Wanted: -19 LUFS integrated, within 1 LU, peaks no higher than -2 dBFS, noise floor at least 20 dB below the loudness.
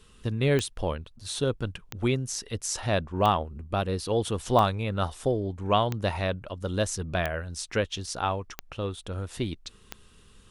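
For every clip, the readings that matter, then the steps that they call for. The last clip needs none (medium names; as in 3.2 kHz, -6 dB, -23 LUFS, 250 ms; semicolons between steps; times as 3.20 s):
clicks found 8; loudness -29.0 LUFS; peak level -8.0 dBFS; loudness target -19.0 LUFS
-> de-click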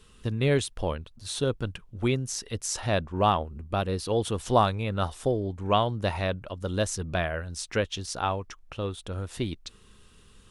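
clicks found 0; loudness -29.0 LUFS; peak level -8.0 dBFS; loudness target -19.0 LUFS
-> trim +10 dB; peak limiter -2 dBFS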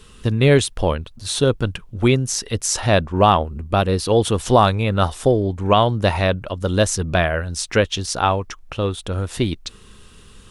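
loudness -19.5 LUFS; peak level -2.0 dBFS; noise floor -46 dBFS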